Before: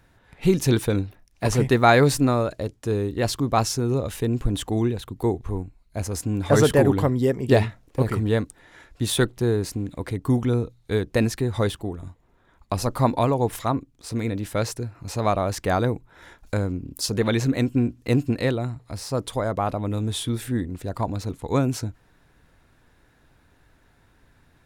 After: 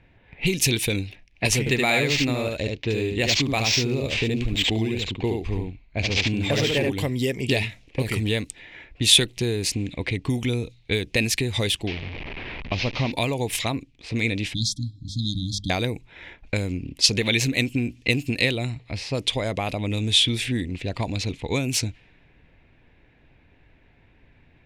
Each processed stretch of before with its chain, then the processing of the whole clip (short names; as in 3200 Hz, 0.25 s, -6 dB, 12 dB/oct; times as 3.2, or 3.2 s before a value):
1.59–6.9 echo 72 ms -3.5 dB + decimation joined by straight lines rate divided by 4×
11.87–13.12 delta modulation 32 kbps, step -31 dBFS + air absorption 150 m
14.54–15.7 brick-wall FIR band-stop 310–3200 Hz + notches 50/100/150/200/250 Hz
whole clip: low-pass opened by the level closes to 1300 Hz, open at -19 dBFS; compressor 4:1, threshold -24 dBFS; resonant high shelf 1800 Hz +10 dB, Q 3; gain +2.5 dB